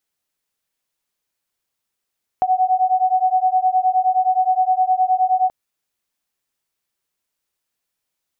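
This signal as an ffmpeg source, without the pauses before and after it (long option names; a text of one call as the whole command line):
ffmpeg -f lavfi -i "aevalsrc='0.141*(sin(2*PI*740*t)+sin(2*PI*749.6*t))':duration=3.08:sample_rate=44100" out.wav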